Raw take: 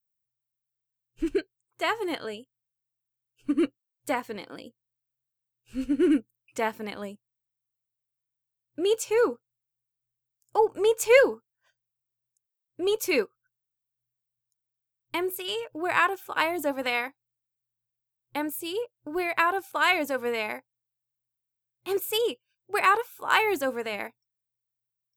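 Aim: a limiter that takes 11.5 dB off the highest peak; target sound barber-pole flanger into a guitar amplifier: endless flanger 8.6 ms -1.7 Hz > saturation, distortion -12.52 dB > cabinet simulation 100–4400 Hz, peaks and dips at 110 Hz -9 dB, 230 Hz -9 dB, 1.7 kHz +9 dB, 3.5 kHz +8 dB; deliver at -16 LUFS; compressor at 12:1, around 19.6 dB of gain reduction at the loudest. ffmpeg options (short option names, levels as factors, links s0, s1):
-filter_complex "[0:a]acompressor=threshold=0.0224:ratio=12,alimiter=level_in=1.88:limit=0.0631:level=0:latency=1,volume=0.531,asplit=2[s0][s1];[s1]adelay=8.6,afreqshift=-1.7[s2];[s0][s2]amix=inputs=2:normalize=1,asoftclip=threshold=0.0119,highpass=100,equalizer=f=110:t=q:w=4:g=-9,equalizer=f=230:t=q:w=4:g=-9,equalizer=f=1700:t=q:w=4:g=9,equalizer=f=3500:t=q:w=4:g=8,lowpass=f=4400:w=0.5412,lowpass=f=4400:w=1.3066,volume=31.6"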